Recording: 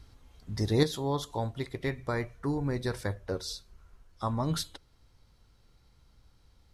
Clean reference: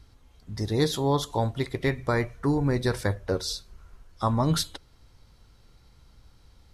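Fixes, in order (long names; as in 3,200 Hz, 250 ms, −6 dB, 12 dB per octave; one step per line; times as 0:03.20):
level 0 dB, from 0:00.83 +6.5 dB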